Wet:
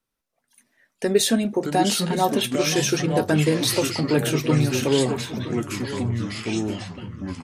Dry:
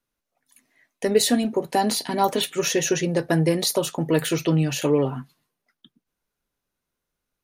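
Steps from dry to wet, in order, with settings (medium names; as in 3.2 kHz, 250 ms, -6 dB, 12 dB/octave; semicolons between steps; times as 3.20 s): pitch shift -1 st; ever faster or slower copies 347 ms, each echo -4 st, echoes 3, each echo -6 dB; delay 972 ms -14 dB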